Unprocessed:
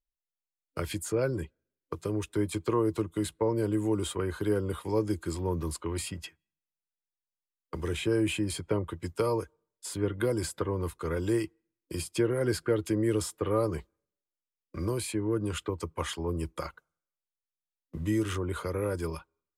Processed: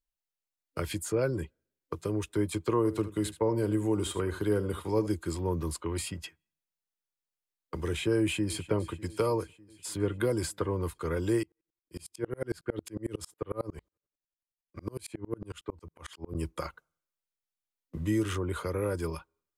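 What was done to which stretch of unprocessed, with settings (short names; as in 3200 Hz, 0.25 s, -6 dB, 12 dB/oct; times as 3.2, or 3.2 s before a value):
2.77–5.07 echo 77 ms -14.5 dB
8.18–8.63 echo throw 0.3 s, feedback 70%, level -17.5 dB
11.43–16.35 dB-ramp tremolo swelling 11 Hz, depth 34 dB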